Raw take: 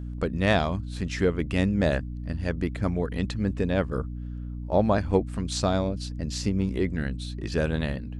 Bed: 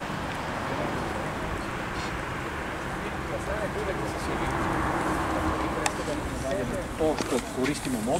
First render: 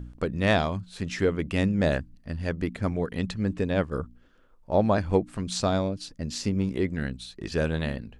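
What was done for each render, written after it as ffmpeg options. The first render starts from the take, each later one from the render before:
-af "bandreject=f=60:t=h:w=4,bandreject=f=120:t=h:w=4,bandreject=f=180:t=h:w=4,bandreject=f=240:t=h:w=4,bandreject=f=300:t=h:w=4"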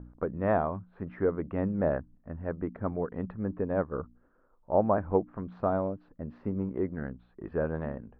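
-af "lowpass=f=1.3k:w=0.5412,lowpass=f=1.3k:w=1.3066,lowshelf=f=270:g=-9"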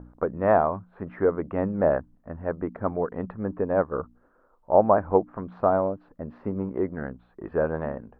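-af "equalizer=f=840:t=o:w=2.6:g=8"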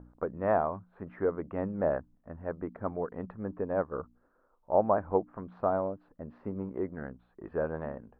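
-af "volume=-7dB"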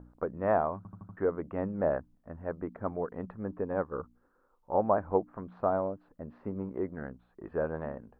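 -filter_complex "[0:a]asettb=1/sr,asplit=3[a][b][c];[a]atrim=end=3.654[d];[b]atrim=start=3.65:end=4.81,asetpts=PTS-STARTPTS,afade=t=in:d=0.004:c=qsin,afade=t=out:st=1.156:d=0.004:c=qsin,bandreject=f=640:w=5.9[e];[c]atrim=start=4.806[f];[d][e]acrossfade=d=0.004:c1=hsin:c2=qsin[g];[g][f]acrossfade=d=0.004:c1=qsin:c2=hsin,asplit=6[h][i][j][k][l][m];[h]atrim=end=0.852[n];[i]atrim=start=0.768:end=0.852[o];[j]atrim=start=0.768:end=0.852[p];[k]atrim=start=0.768:end=0.852[q];[l]atrim=start=0.768:end=0.852[r];[m]atrim=start=1.168[s];[n][o]acrossfade=d=0.004:c1=hsin:c2=hsin[t];[t][p]acrossfade=d=0.004:c1=hsin:c2=hsin[u];[u][q]acrossfade=d=0.004:c1=hsin:c2=hsin[v];[v][r]acrossfade=d=0.004:c1=hsin:c2=hsin[w];[w][s]acrossfade=d=0.004:c1=hsin:c2=hsin"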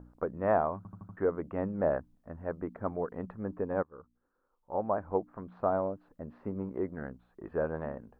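-filter_complex "[0:a]asplit=2[a][b];[a]atrim=end=3.83,asetpts=PTS-STARTPTS,afade=t=out:st=3.826:d=0.004:c=hsin:silence=0.149624[c];[b]atrim=start=3.83,asetpts=PTS-STARTPTS,afade=t=in:d=2.02:silence=0.149624[d];[c][d]concat=n=2:v=0:a=1"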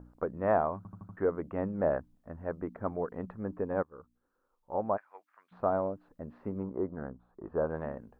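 -filter_complex "[0:a]asplit=3[a][b][c];[a]afade=t=out:st=4.96:d=0.02[d];[b]highpass=f=2.2k:t=q:w=1.5,afade=t=in:st=4.96:d=0.02,afade=t=out:st=5.51:d=0.02[e];[c]afade=t=in:st=5.51:d=0.02[f];[d][e][f]amix=inputs=3:normalize=0,asettb=1/sr,asplit=3[g][h][i];[g]atrim=end=6.634[j];[h]atrim=start=6.63:end=7.7,asetpts=PTS-STARTPTS,afade=t=in:d=0.004:c=qsin,afade=t=out:st=1.066:d=0.004:c=qsin,highshelf=f=1.6k:t=q:w=1.5:g=-10[k];[i]atrim=start=7.696[l];[j][k]acrossfade=d=0.004:c1=hsin:c2=qsin[m];[m][l]acrossfade=d=0.004:c1=qsin:c2=hsin"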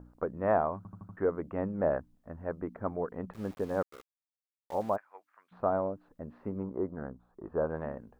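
-filter_complex "[0:a]asettb=1/sr,asplit=3[a][b][c];[a]atrim=end=3.334[d];[b]atrim=start=3.33:end=4.96,asetpts=PTS-STARTPTS,afade=t=in:d=0.004:c=qsin,afade=t=out:st=1.626:d=0.004:c=qsin,aeval=exprs='val(0)*gte(abs(val(0)),0.00447)':c=same[e];[c]atrim=start=4.956[f];[d][e]acrossfade=d=0.004:c1=hsin:c2=qsin[g];[g][f]acrossfade=d=0.004:c1=qsin:c2=hsin"

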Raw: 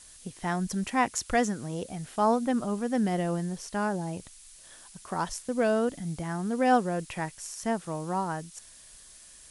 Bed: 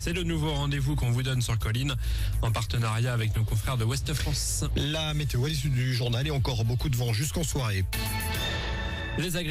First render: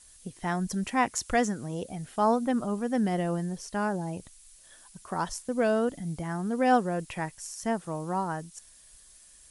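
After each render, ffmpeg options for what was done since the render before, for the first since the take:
-af "afftdn=nr=6:nf=-52"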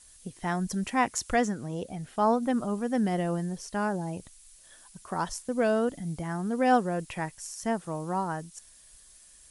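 -filter_complex "[0:a]asettb=1/sr,asplit=3[a][b][c];[a]atrim=end=1.354[d];[b]atrim=start=1.35:end=2.43,asetpts=PTS-STARTPTS,afade=t=in:d=0.004:c=qsin,afade=t=out:st=1.076:d=0.004:c=qsin,highshelf=f=6.3k:g=-5.5[e];[c]atrim=start=2.426[f];[d][e]acrossfade=d=0.004:c1=hsin:c2=qsin[g];[g][f]acrossfade=d=0.004:c1=qsin:c2=hsin"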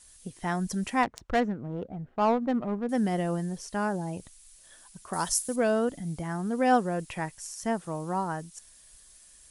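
-filter_complex "[0:a]asettb=1/sr,asplit=3[a][b][c];[a]atrim=end=1.034[d];[b]atrim=start=1.03:end=2.89,asetpts=PTS-STARTPTS,afade=t=in:d=0.004:c=qsin,afade=t=out:st=1.856:d=0.004:c=qsin,adynamicsmooth=sensitivity=2:basefreq=780[e];[c]atrim=start=2.886[f];[d][e]acrossfade=d=0.004:c1=hsin:c2=qsin[g];[g][f]acrossfade=d=0.004:c1=qsin:c2=hsin,asettb=1/sr,asplit=3[h][i][j];[h]atrim=end=5.134[k];[i]atrim=start=5.13:end=5.56,asetpts=PTS-STARTPTS,afade=t=in:d=0.004:c=qsin,afade=t=out:st=0.426:d=0.004:c=qsin,aemphasis=mode=production:type=75fm[l];[j]atrim=start=5.556[m];[k][l]acrossfade=d=0.004:c1=hsin:c2=qsin[n];[n][m]acrossfade=d=0.004:c1=qsin:c2=hsin"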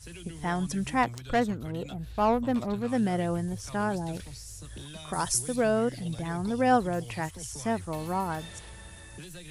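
-filter_complex "[1:a]volume=-15.5dB[a];[0:a][a]amix=inputs=2:normalize=0"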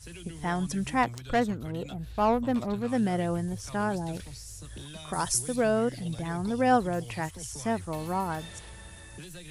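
-af anull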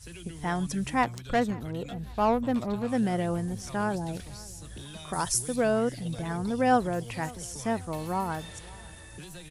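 -filter_complex "[0:a]asplit=2[a][b];[b]adelay=549,lowpass=f=4.5k:p=1,volume=-22dB,asplit=2[c][d];[d]adelay=549,lowpass=f=4.5k:p=1,volume=0.39,asplit=2[e][f];[f]adelay=549,lowpass=f=4.5k:p=1,volume=0.39[g];[a][c][e][g]amix=inputs=4:normalize=0"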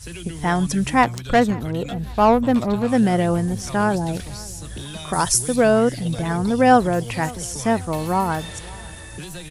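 -af "volume=9.5dB,alimiter=limit=-3dB:level=0:latency=1"

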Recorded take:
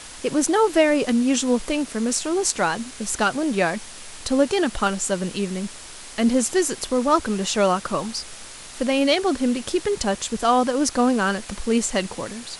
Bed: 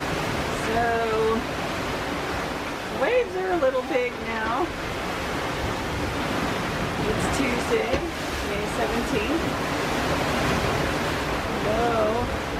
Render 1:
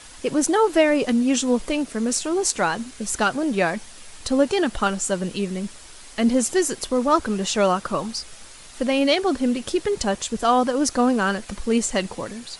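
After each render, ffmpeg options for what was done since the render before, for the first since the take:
-af "afftdn=nr=6:nf=-40"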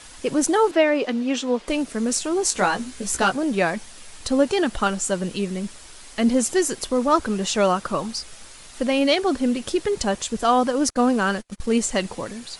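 -filter_complex "[0:a]asettb=1/sr,asplit=3[a][b][c];[a]atrim=end=0.714[d];[b]atrim=start=0.71:end=1.68,asetpts=PTS-STARTPTS,afade=t=in:d=0.004:c=qsin,afade=t=out:st=0.966:d=0.004:c=qsin,acrossover=split=240 5200:gain=0.112 1 0.158[e][f][g];[e][f][g]amix=inputs=3:normalize=0[h];[c]atrim=start=1.676[i];[d][h]acrossfade=d=0.004:c1=hsin:c2=qsin[j];[j][i]acrossfade=d=0.004:c1=qsin:c2=hsin,asettb=1/sr,asplit=3[k][l][m];[k]atrim=end=2.504[n];[l]atrim=start=2.5:end=3.32,asetpts=PTS-STARTPTS,afade=t=in:d=0.004:c=qsin,afade=t=out:st=0.816:d=0.004:c=qsin,asplit=2[o][p];[p]adelay=16,volume=-4dB[q];[o][q]amix=inputs=2:normalize=0,atrim=end_sample=36162[r];[m]atrim=start=3.316[s];[n][r]acrossfade=d=0.004:c1=hsin:c2=qsin[t];[t][s]acrossfade=d=0.004:c1=qsin:c2=hsin,asettb=1/sr,asplit=3[u][v][w];[u]atrim=end=10.904[x];[v]atrim=start=10.9:end=11.74,asetpts=PTS-STARTPTS,afade=t=in:d=0.004:c=qsin,afade=t=out:st=0.836:d=0.004:c=qsin,agate=range=-33dB:threshold=-32dB:ratio=16:release=100:detection=peak[y];[w]atrim=start=11.736[z];[x][y]acrossfade=d=0.004:c1=hsin:c2=qsin[aa];[aa][z]acrossfade=d=0.004:c1=qsin:c2=hsin"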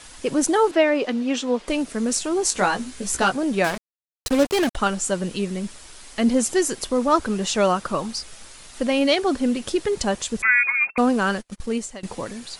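-filter_complex "[0:a]asettb=1/sr,asplit=3[a][b][c];[a]atrim=end=3.644[d];[b]atrim=start=3.64:end=4.75,asetpts=PTS-STARTPTS,afade=t=in:d=0.004:c=qsin,afade=t=out:st=1.106:d=0.004:c=qsin,acrusher=bits=3:mix=0:aa=0.5[e];[c]atrim=start=4.746[f];[d][e]acrossfade=d=0.004:c1=hsin:c2=qsin[g];[g][f]acrossfade=d=0.004:c1=qsin:c2=hsin,asettb=1/sr,asplit=3[h][i][j];[h]atrim=end=10.424[k];[i]atrim=start=10.42:end=10.98,asetpts=PTS-STARTPTS,afade=t=in:d=0.004:c=qsin,afade=t=out:st=0.556:d=0.004:c=qsin,lowpass=f=2.3k:t=q:w=0.5098,lowpass=f=2.3k:t=q:w=0.6013,lowpass=f=2.3k:t=q:w=0.9,lowpass=f=2.3k:t=q:w=2.563,afreqshift=-2700[l];[j]atrim=start=10.976[m];[k][l]acrossfade=d=0.004:c1=hsin:c2=qsin[n];[n][m]acrossfade=d=0.004:c1=qsin:c2=hsin,asplit=2[o][p];[o]atrim=end=12.03,asetpts=PTS-STARTPTS,afade=t=out:st=11.49:d=0.54:silence=0.0841395[q];[p]atrim=start=12.03,asetpts=PTS-STARTPTS,afade=t=in:d=0.004:c=hsin:silence=0.0841395[r];[q][r]concat=n=2:v=0:a=1"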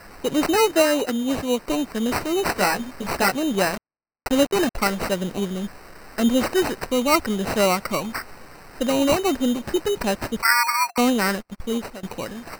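-af "acrusher=samples=13:mix=1:aa=0.000001"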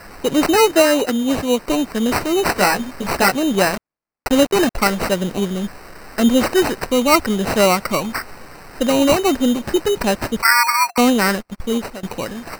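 -af "volume=5dB,alimiter=limit=-3dB:level=0:latency=1"

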